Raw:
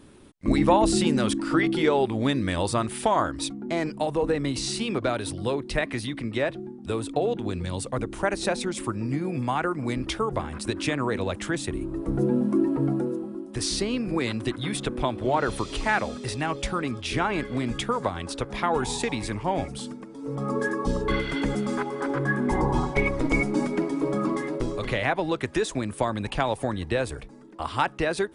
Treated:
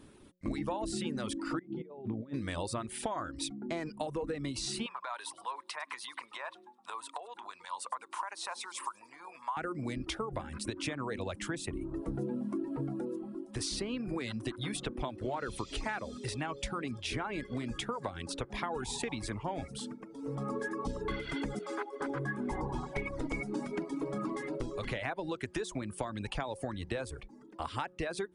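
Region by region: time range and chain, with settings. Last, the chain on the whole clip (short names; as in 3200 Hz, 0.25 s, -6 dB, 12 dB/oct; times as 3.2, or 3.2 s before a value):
1.59–2.34 negative-ratio compressor -28 dBFS, ratio -0.5 + band-pass 190 Hz, Q 0.64
4.86–9.57 compressor 16:1, threshold -30 dBFS + resonant high-pass 1000 Hz, resonance Q 7.1 + thin delay 0.102 s, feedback 40%, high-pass 4000 Hz, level -10.5 dB
21.59–22.01 expander -29 dBFS + Chebyshev high-pass 260 Hz, order 10 + high shelf 8000 Hz -5 dB
whole clip: reverb removal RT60 0.54 s; de-hum 181.2 Hz, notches 3; compressor 6:1, threshold -28 dBFS; gain -4.5 dB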